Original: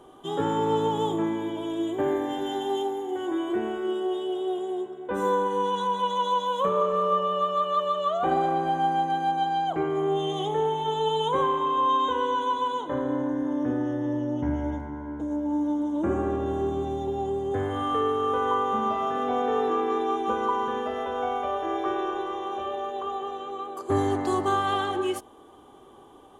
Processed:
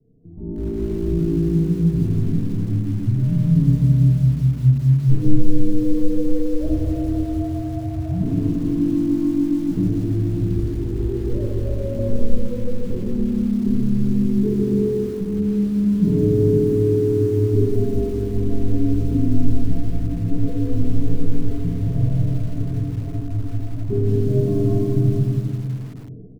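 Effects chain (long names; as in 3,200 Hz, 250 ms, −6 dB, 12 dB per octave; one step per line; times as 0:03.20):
inverse Chebyshev low-pass filter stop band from 2,600 Hz, stop band 70 dB
0:09.56–0:11.99: bouncing-ball delay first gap 290 ms, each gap 0.65×, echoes 5
brickwall limiter −22.5 dBFS, peak gain reduction 8 dB
automatic gain control gain up to 16.5 dB
frequency shifter −500 Hz
low-shelf EQ 450 Hz −9.5 dB
comb filter 6.7 ms, depth 40%
convolution reverb RT60 2.1 s, pre-delay 5 ms, DRR −3 dB
feedback echo at a low word length 163 ms, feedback 35%, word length 5 bits, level −15 dB
level −2 dB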